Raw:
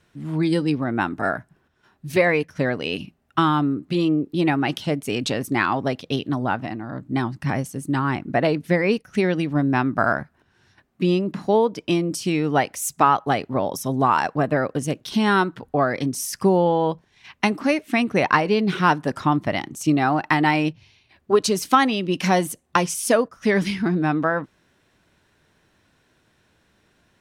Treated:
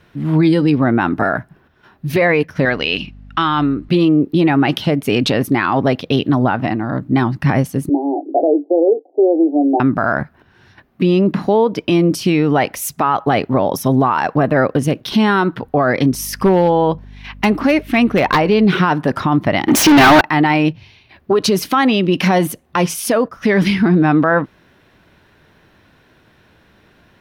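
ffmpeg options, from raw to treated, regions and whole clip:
ffmpeg -i in.wav -filter_complex "[0:a]asettb=1/sr,asplit=3[link_01][link_02][link_03];[link_01]atrim=end=2.654[link_04];[link_02]atrim=start=2.65:end=3.89,asetpts=PTS-STARTPTS,afade=type=in:duration=0.004:curve=qsin,afade=type=out:start_time=1.236:duration=0.004:curve=qsin,lowpass=5900,aeval=exprs='val(0)+0.00794*(sin(2*PI*50*n/s)+sin(2*PI*2*50*n/s)/2+sin(2*PI*3*50*n/s)/3+sin(2*PI*4*50*n/s)/4+sin(2*PI*5*50*n/s)/5)':channel_layout=same,tiltshelf=frequency=1200:gain=-6.5[link_05];[link_03]atrim=start=3.886[link_06];[link_04][link_05]acrossfade=duration=0.004:curve1=hsin:curve2=qsin[link_07];[link_07][link_06]acrossfade=duration=0.004:curve1=qsin:curve2=hsin,asettb=1/sr,asplit=3[link_08][link_09][link_10];[link_08]atrim=end=7.894[link_11];[link_09]atrim=start=7.89:end=9.8,asetpts=PTS-STARTPTS,afade=type=in:duration=0.004:curve=qsin,afade=type=out:start_time=1.906:duration=0.004:curve=qsin,asuperpass=centerf=480:order=20:qfactor=0.91,asplit=2[link_12][link_13];[link_13]adelay=18,volume=-10dB[link_14];[link_12][link_14]amix=inputs=2:normalize=0,atrim=end_sample=84231[link_15];[link_10]atrim=start=9.796[link_16];[link_11][link_15]acrossfade=duration=0.004:curve1=hsin:curve2=qsin[link_17];[link_17][link_16]acrossfade=duration=0.004:curve1=qsin:curve2=hsin,asettb=1/sr,asplit=3[link_18][link_19][link_20];[link_18]atrim=end=16.114[link_21];[link_19]atrim=start=16.11:end=18.66,asetpts=PTS-STARTPTS,afade=type=in:duration=0.004:curve=qsin,afade=type=out:start_time=2.546:duration=0.004:curve=qsin,aeval=exprs='val(0)+0.00447*(sin(2*PI*50*n/s)+sin(2*PI*2*50*n/s)/2+sin(2*PI*3*50*n/s)/3+sin(2*PI*4*50*n/s)/4+sin(2*PI*5*50*n/s)/5)':channel_layout=same,aeval=exprs='0.282*(abs(mod(val(0)/0.282+3,4)-2)-1)':channel_layout=same[link_22];[link_20]atrim=start=18.656[link_23];[link_21][link_22]acrossfade=duration=0.004:curve1=hsin:curve2=qsin[link_24];[link_24][link_23]acrossfade=duration=0.004:curve1=qsin:curve2=hsin,asettb=1/sr,asplit=3[link_25][link_26][link_27];[link_25]atrim=end=19.684[link_28];[link_26]atrim=start=19.68:end=20.21,asetpts=PTS-STARTPTS,afade=type=in:duration=0.004:curve=qsin,afade=type=out:start_time=0.526:duration=0.004:curve=qsin,aecho=1:1:3.3:0.53,atrim=end_sample=23373,asplit=2[link_29][link_30];[link_30]highpass=frequency=720:poles=1,volume=32dB,asoftclip=type=tanh:threshold=-7dB[link_31];[link_29][link_31]amix=inputs=2:normalize=0,lowpass=frequency=5300:poles=1,volume=-6dB,aeval=exprs='0.447*sin(PI/2*1.58*val(0)/0.447)':channel_layout=same[link_32];[link_27]atrim=start=20.206[link_33];[link_28][link_32]acrossfade=duration=0.004:curve1=hsin:curve2=qsin[link_34];[link_34][link_33]acrossfade=duration=0.004:curve1=qsin:curve2=hsin,equalizer=frequency=7800:width=1.1:gain=-13,alimiter=level_in=16dB:limit=-1dB:release=50:level=0:latency=1,volume=-4.5dB" out.wav

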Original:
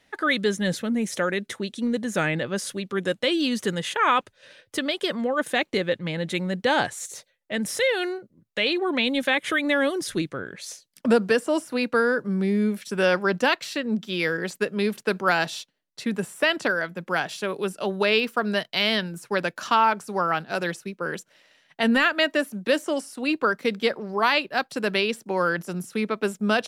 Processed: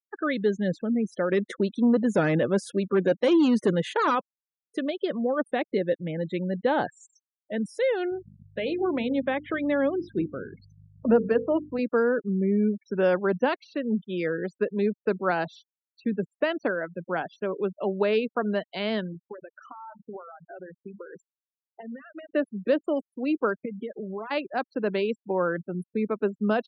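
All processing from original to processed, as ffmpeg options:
ffmpeg -i in.wav -filter_complex "[0:a]asettb=1/sr,asplit=3[link_01][link_02][link_03];[link_01]atrim=end=1.314[link_04];[link_02]atrim=start=1.31:end=4.15,asetpts=PTS-STARTPTS,afade=type=in:duration=0.004:curve=qsin,afade=type=out:start_time=2.836:duration=0.004:curve=qsin,lowshelf=frequency=160:gain=-2.5,acontrast=70,asoftclip=type=hard:threshold=-15.5dB[link_05];[link_03]atrim=start=4.146[link_06];[link_04][link_05]acrossfade=duration=0.004:curve1=hsin:curve2=qsin[link_07];[link_07][link_06]acrossfade=duration=0.004:curve1=qsin:curve2=hsin,asettb=1/sr,asplit=3[link_08][link_09][link_10];[link_08]atrim=end=8.104[link_11];[link_09]atrim=start=8.1:end=11.79,asetpts=PTS-STARTPTS,afade=type=in:duration=0.004:curve=qsin,afade=type=out:start_time=3.686:duration=0.004:curve=qsin,lowpass=frequency=3400:poles=1,bandreject=frequency=50:width_type=h:width=6,bandreject=frequency=100:width_type=h:width=6,bandreject=frequency=150:width_type=h:width=6,bandreject=frequency=200:width_type=h:width=6,bandreject=frequency=250:width_type=h:width=6,bandreject=frequency=300:width_type=h:width=6,bandreject=frequency=350:width_type=h:width=6,bandreject=frequency=400:width_type=h:width=6,bandreject=frequency=450:width_type=h:width=6,bandreject=frequency=500:width_type=h:width=6,aeval=exprs='val(0)+0.0158*(sin(2*PI*50*n/s)+sin(2*PI*2*50*n/s)/2+sin(2*PI*3*50*n/s)/3+sin(2*PI*4*50*n/s)/4+sin(2*PI*5*50*n/s)/5)':channel_layout=same[link_12];[link_10]atrim=start=11.786[link_13];[link_11][link_12]acrossfade=duration=0.004:curve1=hsin:curve2=qsin[link_14];[link_14][link_13]acrossfade=duration=0.004:curve1=qsin:curve2=hsin,asettb=1/sr,asplit=3[link_15][link_16][link_17];[link_15]atrim=end=19.134[link_18];[link_16]atrim=start=19.13:end=22.3,asetpts=PTS-STARTPTS,afade=type=in:duration=0.004:curve=qsin,afade=type=out:start_time=3.166:duration=0.004:curve=qsin,bandreject=frequency=50:width_type=h:width=6,bandreject=frequency=100:width_type=h:width=6,bandreject=frequency=150:width_type=h:width=6,bandreject=frequency=200:width_type=h:width=6,bandreject=frequency=250:width_type=h:width=6,bandreject=frequency=300:width_type=h:width=6,acompressor=threshold=-33dB:ratio=20:attack=3.2:release=140:knee=1:detection=peak,aecho=1:1:65|130|195:0.178|0.0605|0.0206,atrim=end_sample=139797[link_19];[link_17]atrim=start=22.296[link_20];[link_18][link_19]acrossfade=duration=0.004:curve1=hsin:curve2=qsin[link_21];[link_21][link_20]acrossfade=duration=0.004:curve1=qsin:curve2=hsin,asettb=1/sr,asplit=3[link_22][link_23][link_24];[link_22]atrim=end=23.654[link_25];[link_23]atrim=start=23.65:end=24.31,asetpts=PTS-STARTPTS,afade=type=in:duration=0.004:curve=qsin,afade=type=out:start_time=0.656:duration=0.004:curve=qsin,lowshelf=frequency=86:gain=11,aecho=1:1:4.8:0.44,atrim=end_sample=29106,acompressor=threshold=-30dB:ratio=5:attack=3.2:release=140:knee=1:detection=peak[link_26];[link_24]atrim=start=24.306[link_27];[link_25][link_26]acrossfade=duration=0.004:curve1=hsin:curve2=qsin[link_28];[link_28][link_27]acrossfade=duration=0.004:curve1=qsin:curve2=hsin,highpass=frequency=250:poles=1,afftfilt=real='re*gte(hypot(re,im),0.0355)':imag='im*gte(hypot(re,im),0.0355)':win_size=1024:overlap=0.75,tiltshelf=frequency=1300:gain=9.5,volume=-6dB" out.wav

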